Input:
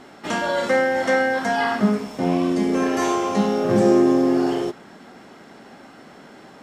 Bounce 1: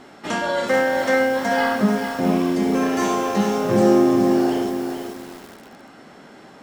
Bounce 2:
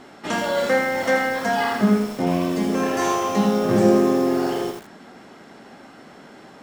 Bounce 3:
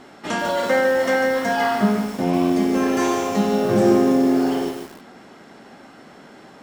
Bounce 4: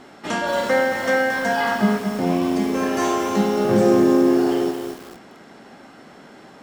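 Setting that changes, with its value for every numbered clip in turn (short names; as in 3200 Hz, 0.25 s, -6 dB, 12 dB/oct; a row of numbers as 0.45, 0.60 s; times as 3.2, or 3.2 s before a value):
lo-fi delay, time: 436, 81, 147, 226 ms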